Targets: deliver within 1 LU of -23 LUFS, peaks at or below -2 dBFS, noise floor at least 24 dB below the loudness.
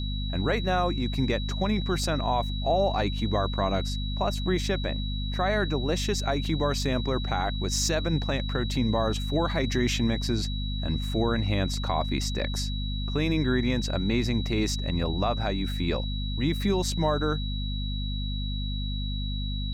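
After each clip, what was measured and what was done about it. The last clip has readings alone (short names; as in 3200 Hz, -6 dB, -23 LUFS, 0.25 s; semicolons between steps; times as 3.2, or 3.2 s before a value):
hum 50 Hz; harmonics up to 250 Hz; hum level -28 dBFS; steady tone 3900 Hz; tone level -37 dBFS; loudness -28.0 LUFS; peak -13.5 dBFS; loudness target -23.0 LUFS
-> notches 50/100/150/200/250 Hz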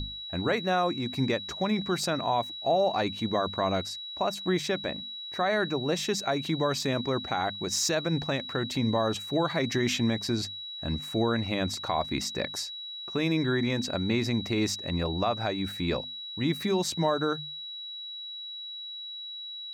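hum none; steady tone 3900 Hz; tone level -37 dBFS
-> notch 3900 Hz, Q 30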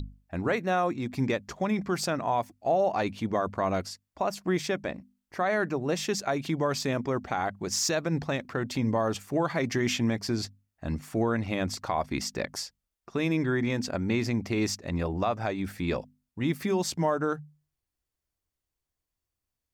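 steady tone none; loudness -29.5 LUFS; peak -14.5 dBFS; loudness target -23.0 LUFS
-> gain +6.5 dB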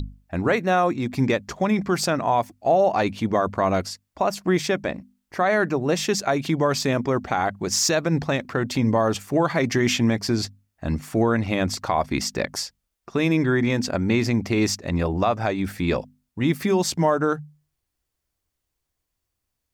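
loudness -23.0 LUFS; peak -8.0 dBFS; noise floor -80 dBFS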